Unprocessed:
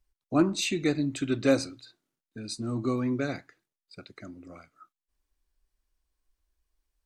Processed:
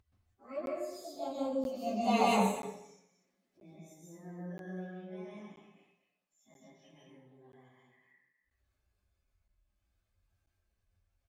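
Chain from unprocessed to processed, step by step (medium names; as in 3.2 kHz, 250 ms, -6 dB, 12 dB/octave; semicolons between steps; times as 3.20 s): frequency-domain pitch shifter +8.5 st; Doppler pass-by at 1.42 s, 38 m/s, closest 5.3 m; plain phase-vocoder stretch 1.6×; echo from a far wall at 41 m, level -17 dB; upward compressor, threshold -56 dBFS; treble shelf 5.8 kHz -12 dB; comb of notches 470 Hz; plate-style reverb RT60 0.7 s, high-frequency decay 0.85×, pre-delay 115 ms, DRR -3.5 dB; crackling interface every 0.98 s, samples 512, zero, from 0.66 s; trim +4.5 dB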